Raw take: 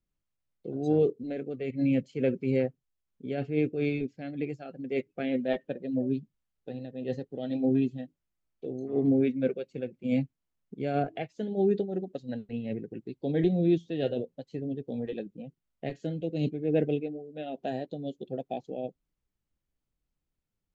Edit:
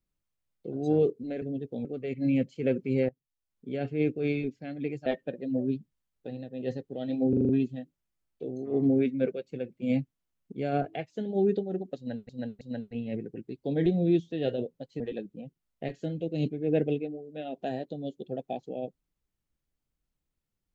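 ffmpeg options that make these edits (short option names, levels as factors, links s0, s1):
-filter_complex "[0:a]asplit=13[s0][s1][s2][s3][s4][s5][s6][s7][s8][s9][s10][s11][s12];[s0]atrim=end=1.422[s13];[s1]atrim=start=14.578:end=15.012[s14];[s2]atrim=start=1.418:end=2.66,asetpts=PTS-STARTPTS,afade=t=out:st=1.238:d=0.004:c=hsin:silence=0.105925[s15];[s3]atrim=start=2.66:end=4.632,asetpts=PTS-STARTPTS,afade=t=in:d=0.59:silence=0.105925[s16];[s4]atrim=start=5.478:end=7.752[s17];[s5]atrim=start=7.708:end=7.752[s18];[s6]atrim=start=7.708:end=7.752[s19];[s7]atrim=start=7.708:end=7.752[s20];[s8]atrim=start=7.708:end=7.752[s21];[s9]atrim=start=7.708:end=12.512[s22];[s10]atrim=start=12.188:end=12.512[s23];[s11]atrim=start=12.188:end=14.582[s24];[s12]atrim=start=15.008[s25];[s13][s14]acrossfade=d=0.004:c1=hsin:c2=hsin[s26];[s15][s16]concat=n=2:v=0:a=1[s27];[s26][s27]acrossfade=d=0.004:c1=hsin:c2=hsin[s28];[s28][s17]acrossfade=d=0.004:c1=hsin:c2=hsin[s29];[s29][s18]acrossfade=d=0.004:c1=hsin:c2=hsin[s30];[s30][s19]acrossfade=d=0.004:c1=hsin:c2=hsin[s31];[s31][s20]acrossfade=d=0.004:c1=hsin:c2=hsin[s32];[s32][s21]acrossfade=d=0.004:c1=hsin:c2=hsin[s33];[s33][s22]acrossfade=d=0.004:c1=hsin:c2=hsin[s34];[s34][s23]acrossfade=d=0.004:c1=hsin:c2=hsin[s35];[s35][s24]acrossfade=d=0.004:c1=hsin:c2=hsin[s36];[s36][s25]acrossfade=d=0.004:c1=hsin:c2=hsin"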